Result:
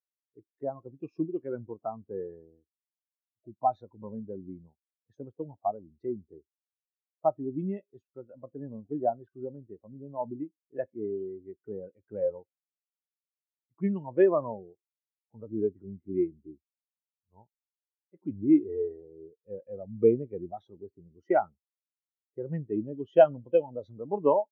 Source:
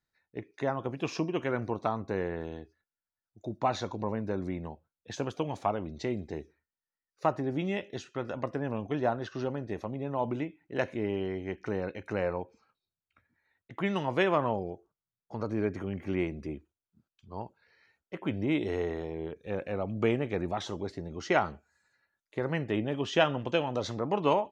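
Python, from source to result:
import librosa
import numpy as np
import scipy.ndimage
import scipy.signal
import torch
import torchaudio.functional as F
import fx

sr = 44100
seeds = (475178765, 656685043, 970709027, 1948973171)

y = fx.spectral_expand(x, sr, expansion=2.5)
y = F.gain(torch.from_numpy(y), 2.0).numpy()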